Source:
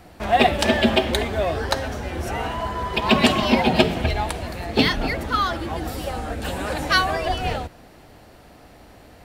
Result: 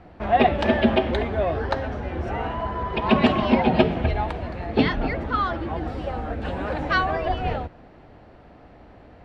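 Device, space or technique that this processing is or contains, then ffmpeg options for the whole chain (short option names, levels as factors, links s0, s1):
phone in a pocket: -af "lowpass=3500,highshelf=f=2500:g=-10"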